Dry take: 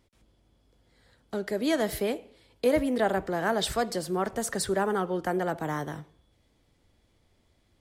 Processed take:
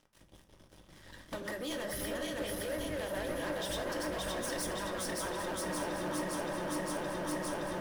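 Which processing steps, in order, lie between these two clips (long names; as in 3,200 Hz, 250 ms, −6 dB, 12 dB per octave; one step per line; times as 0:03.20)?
feedback delay that plays each chunk backwards 284 ms, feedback 78%, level −0.5 dB
downward compressor, threshold −37 dBFS, peak gain reduction 19 dB
harmonic and percussive parts rebalanced harmonic −16 dB
EQ curve with evenly spaced ripples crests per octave 1.2, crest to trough 9 dB
leveller curve on the samples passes 5
delay that swaps between a low-pass and a high-pass 394 ms, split 1,400 Hz, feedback 53%, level −5 dB
on a send at −5 dB: convolution reverb RT60 0.55 s, pre-delay 3 ms
on the sum: level −7 dB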